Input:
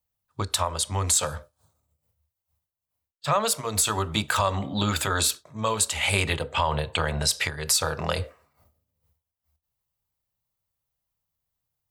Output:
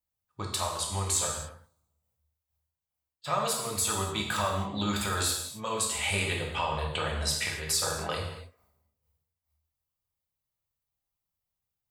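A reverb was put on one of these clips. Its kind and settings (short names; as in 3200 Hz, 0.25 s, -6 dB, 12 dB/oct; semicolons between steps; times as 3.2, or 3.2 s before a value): non-linear reverb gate 0.31 s falling, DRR -1.5 dB; gain -8.5 dB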